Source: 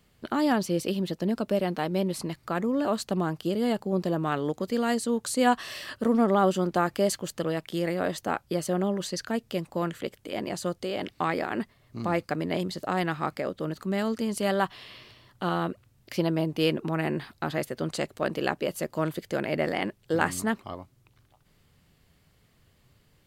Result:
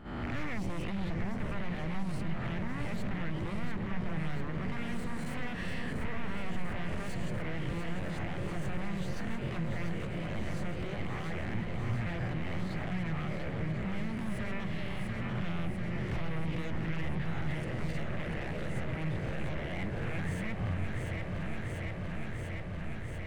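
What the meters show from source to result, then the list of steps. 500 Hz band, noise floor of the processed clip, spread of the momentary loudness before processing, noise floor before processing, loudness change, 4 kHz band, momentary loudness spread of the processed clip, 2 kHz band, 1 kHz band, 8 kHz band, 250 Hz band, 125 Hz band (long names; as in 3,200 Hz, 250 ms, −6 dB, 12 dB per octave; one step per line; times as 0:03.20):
−13.5 dB, −38 dBFS, 8 LU, −64 dBFS, −8.0 dB, −10.0 dB, 3 LU, −5.0 dB, −12.5 dB, −16.5 dB, −8.0 dB, +0.5 dB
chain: peak hold with a rise ahead of every peak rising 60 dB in 0.75 s
brickwall limiter −17 dBFS, peak gain reduction 11 dB
noise gate −46 dBFS, range −10 dB
downsampling to 22,050 Hz
low-shelf EQ 98 Hz +11 dB
wave folding −25.5 dBFS
power curve on the samples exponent 0.7
delay that swaps between a low-pass and a high-pass 346 ms, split 830 Hz, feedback 88%, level −6 dB
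downward compressor, threshold −31 dBFS, peak gain reduction 7.5 dB
drawn EQ curve 110 Hz 0 dB, 270 Hz −13 dB, 940 Hz −16 dB, 1,400 Hz −15 dB, 2,000 Hz −7 dB, 4,700 Hz −24 dB
level +8 dB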